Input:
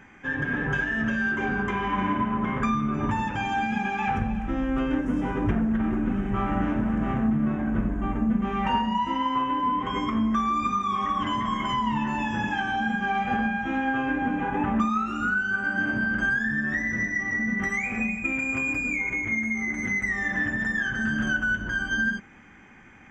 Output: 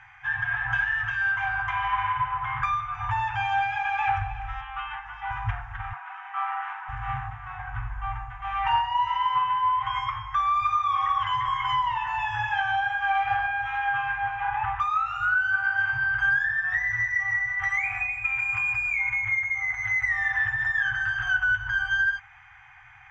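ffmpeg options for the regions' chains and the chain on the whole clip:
-filter_complex "[0:a]asettb=1/sr,asplit=3[a][b][c];[a]atrim=end=4.614[d];[b]atrim=start=4.61:end=5.31,asetpts=PTS-STARTPTS,afade=t=in:d=0.004:c=qsin,afade=t=out:st=0.696:d=0.004:c=qsin,acrossover=split=260 4500:gain=0.224 1 0.0708[e][f][g];[e][f][g]amix=inputs=3:normalize=0,bandreject=f=4.1k:w=23,aecho=1:1:3.5:0.54,atrim=end_sample=30870[h];[c]atrim=start=5.306[i];[d][h]acrossfade=d=0.004:c1=hsin:c2=qsin[j];[j][i]acrossfade=d=0.004:c1=qsin:c2=hsin,asettb=1/sr,asplit=3[k][l][m];[k]atrim=end=5.934[n];[l]atrim=start=5.93:end=6.89,asetpts=PTS-STARTPTS,afade=t=in:d=0.004:c=qsin,afade=t=out:st=0.956:d=0.004:c=qsin,aemphasis=mode=reproduction:type=50fm,aeval=exprs='val(0)+0.00398*sin(2*PI*970*n/s)':c=same,highpass=f=720:w=0.5412,highpass=f=720:w=1.3066[o];[m]atrim=start=6.886[p];[n][o]acrossfade=d=0.004:c1=hsin:c2=qsin[q];[q][p]acrossfade=d=0.004:c1=qsin:c2=hsin,lowpass=3.8k,afftfilt=real='re*(1-between(b*sr/4096,130,710))':imag='im*(1-between(b*sr/4096,130,710))':win_size=4096:overlap=0.75,lowshelf=f=94:g=-7.5,volume=2.5dB"

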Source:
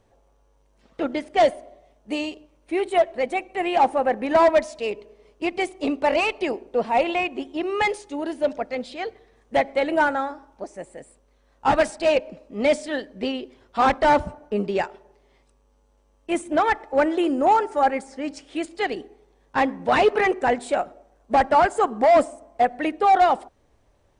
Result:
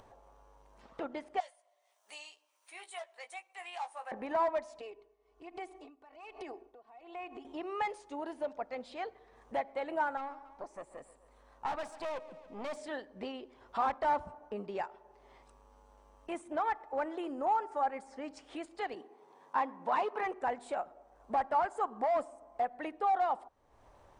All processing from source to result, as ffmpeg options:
-filter_complex "[0:a]asettb=1/sr,asplit=3[a][b][c];[a]atrim=end=1.404[d];[b]atrim=start=1.4:end=4.12,asetpts=PTS-STARTPTS,afade=t=in:d=0.004:c=qsin,afade=t=out:st=2.716:d=0.004:c=qsin,highpass=560,aderivative,asplit=2[e][f];[f]adelay=17,volume=-7dB[g];[e][g]amix=inputs=2:normalize=0,atrim=end_sample=119952[h];[c]atrim=start=4.116[i];[d][h]acrossfade=d=0.004:c1=hsin:c2=qsin[j];[j][i]acrossfade=d=0.004:c1=qsin:c2=hsin,asettb=1/sr,asplit=3[k][l][m];[k]atrim=end=4.814[n];[l]atrim=start=4.81:end=7.45,asetpts=PTS-STARTPTS,afade=t=in:d=0.004:c=qsin,afade=t=out:st=2.636:d=0.004:c=qsin,aecho=1:1:2.7:0.76,atrim=end_sample=116424,acompressor=threshold=-35dB:ratio=3:attack=3.2:release=140:knee=1:detection=peak,aeval=exprs='val(0)*pow(10,-26*(0.5-0.5*cos(2*PI*1.2*n/s))/20)':c=same[o];[m]atrim=start=7.446[p];[n][o]acrossfade=d=0.004:c1=hsin:c2=qsin[q];[q][p]acrossfade=d=0.004:c1=qsin:c2=hsin,asettb=1/sr,asplit=3[r][s][t];[r]atrim=end=10.174[u];[s]atrim=start=10.17:end=12.77,asetpts=PTS-STARTPTS,afade=t=in:d=0.004:c=qsin,afade=t=out:st=2.596:d=0.004:c=qsin,aeval=exprs='(tanh(15.8*val(0)+0.7)-tanh(0.7))/15.8':c=same,aecho=1:1:140|280|420:0.106|0.0466|0.0205,atrim=end_sample=114660[v];[t]atrim=start=12.766[w];[u][v]acrossfade=d=0.004:c1=hsin:c2=qsin[x];[x][w]acrossfade=d=0.004:c1=qsin:c2=hsin,asettb=1/sr,asplit=3[y][z][aa];[y]atrim=end=18.944[ab];[z]atrim=start=18.94:end=20.23,asetpts=PTS-STARTPTS,afade=t=in:d=0.004:c=qsin,afade=t=out:st=1.286:d=0.004:c=qsin,highpass=f=160:w=0.5412,highpass=f=160:w=1.3066,equalizer=f=1k:w=6:g=7.5[ac];[aa]atrim=start=20.226[ad];[ab][ac]acrossfade=d=0.004:c1=hsin:c2=qsin[ae];[ae][ad]acrossfade=d=0.004:c1=qsin:c2=hsin,acompressor=threshold=-43dB:ratio=2,equalizer=f=970:t=o:w=1.4:g=11,acompressor=mode=upward:threshold=-46dB:ratio=2.5,volume=-6.5dB"

